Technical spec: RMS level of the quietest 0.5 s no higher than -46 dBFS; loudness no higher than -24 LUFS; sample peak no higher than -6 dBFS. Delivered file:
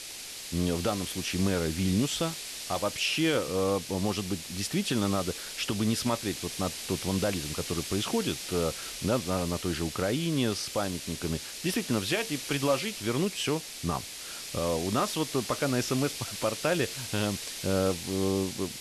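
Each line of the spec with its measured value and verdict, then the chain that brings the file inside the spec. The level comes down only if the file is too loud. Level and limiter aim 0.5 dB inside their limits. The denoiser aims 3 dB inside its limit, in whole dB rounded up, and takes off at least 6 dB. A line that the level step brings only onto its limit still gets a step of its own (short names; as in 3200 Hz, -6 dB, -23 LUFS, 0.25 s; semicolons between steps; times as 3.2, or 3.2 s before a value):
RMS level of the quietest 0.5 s -41 dBFS: fail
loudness -30.0 LUFS: OK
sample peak -14.5 dBFS: OK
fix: denoiser 8 dB, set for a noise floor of -41 dBFS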